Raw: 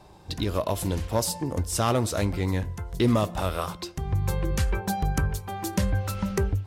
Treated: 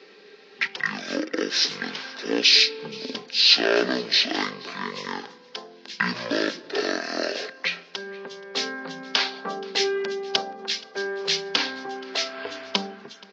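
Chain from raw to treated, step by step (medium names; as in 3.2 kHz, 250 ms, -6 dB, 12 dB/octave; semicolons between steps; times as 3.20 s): elliptic band-pass 410–9900 Hz, stop band 50 dB; tilt EQ +4.5 dB/octave; band-stop 2.5 kHz, Q 26; small resonant body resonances 830/3200 Hz, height 11 dB, ringing for 35 ms; on a send: delay 238 ms -23.5 dB; on the sum: speed mistake 15 ips tape played at 7.5 ips; trim +1 dB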